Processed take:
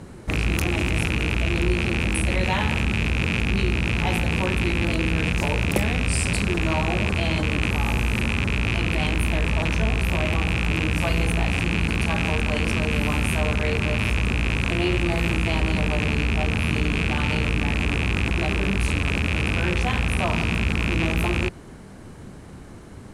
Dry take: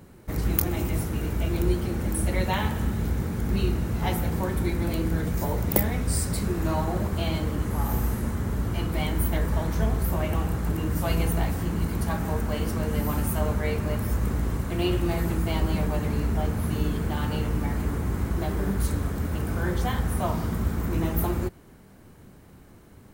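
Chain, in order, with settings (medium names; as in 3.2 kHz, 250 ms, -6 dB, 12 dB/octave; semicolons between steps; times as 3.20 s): rattle on loud lows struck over -29 dBFS, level -16 dBFS; low-pass 10 kHz 24 dB/octave; in parallel at -1.5 dB: compressor with a negative ratio -32 dBFS, ratio -1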